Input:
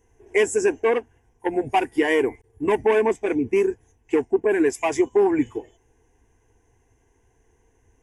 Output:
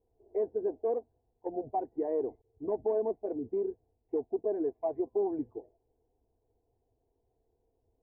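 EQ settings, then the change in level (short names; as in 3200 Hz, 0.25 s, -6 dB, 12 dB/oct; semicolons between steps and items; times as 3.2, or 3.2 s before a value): ladder low-pass 710 Hz, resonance 60%; -5.0 dB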